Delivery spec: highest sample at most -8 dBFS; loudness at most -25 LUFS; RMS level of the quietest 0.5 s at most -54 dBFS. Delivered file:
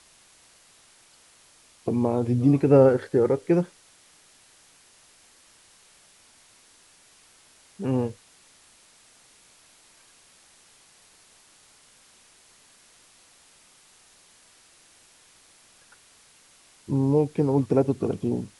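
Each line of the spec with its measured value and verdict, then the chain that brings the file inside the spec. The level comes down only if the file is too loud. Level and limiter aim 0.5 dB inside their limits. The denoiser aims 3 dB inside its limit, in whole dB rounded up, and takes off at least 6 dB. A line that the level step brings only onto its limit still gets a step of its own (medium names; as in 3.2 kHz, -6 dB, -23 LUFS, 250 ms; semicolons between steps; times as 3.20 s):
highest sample -5.5 dBFS: fail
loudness -23.0 LUFS: fail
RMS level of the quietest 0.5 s -57 dBFS: pass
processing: trim -2.5 dB; peak limiter -8.5 dBFS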